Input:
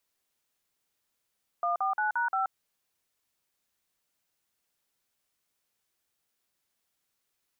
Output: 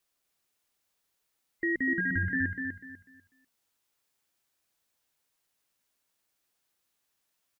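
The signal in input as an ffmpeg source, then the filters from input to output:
-f lavfi -i "aevalsrc='0.0398*clip(min(mod(t,0.175),0.129-mod(t,0.175))/0.002,0,1)*(eq(floor(t/0.175),0)*(sin(2*PI*697*mod(t,0.175))+sin(2*PI*1209*mod(t,0.175)))+eq(floor(t/0.175),1)*(sin(2*PI*770*mod(t,0.175))+sin(2*PI*1209*mod(t,0.175)))+eq(floor(t/0.175),2)*(sin(2*PI*852*mod(t,0.175))+sin(2*PI*1477*mod(t,0.175)))+eq(floor(t/0.175),3)*(sin(2*PI*941*mod(t,0.175))+sin(2*PI*1477*mod(t,0.175)))+eq(floor(t/0.175),4)*(sin(2*PI*770*mod(t,0.175))+sin(2*PI*1336*mod(t,0.175))))':d=0.875:s=44100"
-filter_complex "[0:a]afftfilt=real='real(if(between(b,1,1008),(2*floor((b-1)/48)+1)*48-b,b),0)':imag='imag(if(between(b,1,1008),(2*floor((b-1)/48)+1)*48-b,b),0)*if(between(b,1,1008),-1,1)':win_size=2048:overlap=0.75,bandreject=f=60:t=h:w=6,bandreject=f=120:t=h:w=6,bandreject=f=180:t=h:w=6,bandreject=f=240:t=h:w=6,asplit=2[a][b];[b]aecho=0:1:247|494|741|988:0.531|0.143|0.0387|0.0104[c];[a][c]amix=inputs=2:normalize=0"

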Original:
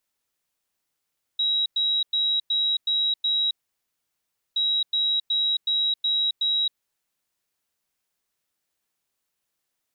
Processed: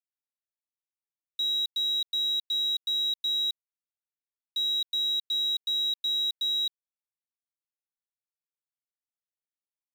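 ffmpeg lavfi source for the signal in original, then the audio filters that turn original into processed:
-f lavfi -i "aevalsrc='0.1*sin(2*PI*3850*t)*clip(min(mod(mod(t,3.17),0.37),0.27-mod(mod(t,3.17),0.37))/0.005,0,1)*lt(mod(t,3.17),2.22)':d=6.34:s=44100"
-af "alimiter=level_in=0.5dB:limit=-24dB:level=0:latency=1,volume=-0.5dB,acrusher=bits=6:mix=0:aa=0.5"

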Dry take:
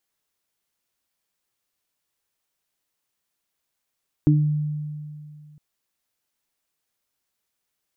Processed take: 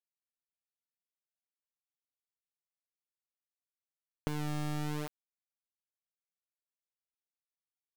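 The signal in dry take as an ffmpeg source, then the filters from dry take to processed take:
-f lavfi -i "aevalsrc='0.211*pow(10,-3*t/2.39)*sin(2*PI*150*t)+0.237*pow(10,-3*t/0.33)*sin(2*PI*300*t)':d=1.31:s=44100"
-af "highpass=f=85:p=1,acompressor=threshold=-31dB:ratio=20,acrusher=bits=3:dc=4:mix=0:aa=0.000001"

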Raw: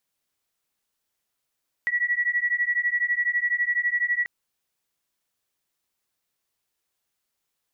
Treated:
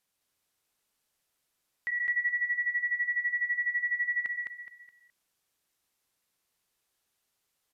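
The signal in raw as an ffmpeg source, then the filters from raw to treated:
-f lavfi -i "aevalsrc='0.0596*(sin(2*PI*1930*t)+sin(2*PI*1942*t))':d=2.39:s=44100"
-af "alimiter=level_in=3dB:limit=-24dB:level=0:latency=1:release=21,volume=-3dB,aecho=1:1:210|420|630|840:0.668|0.227|0.0773|0.0263,aresample=32000,aresample=44100"

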